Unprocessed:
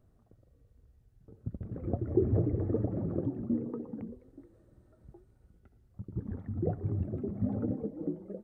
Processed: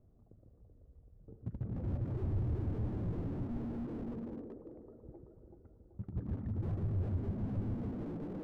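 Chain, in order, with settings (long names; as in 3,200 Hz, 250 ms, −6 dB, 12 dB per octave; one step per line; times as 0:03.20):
echo with a time of its own for lows and highs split 340 Hz, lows 145 ms, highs 382 ms, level −3.5 dB
low-pass that shuts in the quiet parts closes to 750 Hz, open at −25 dBFS
slew-rate limiting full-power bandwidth 3 Hz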